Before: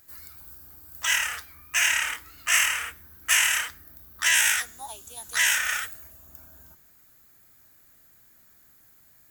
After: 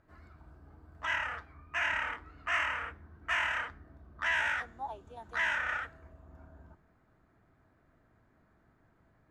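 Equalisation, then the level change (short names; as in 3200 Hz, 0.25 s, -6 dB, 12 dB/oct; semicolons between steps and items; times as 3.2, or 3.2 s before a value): LPF 1100 Hz 12 dB/oct; +2.5 dB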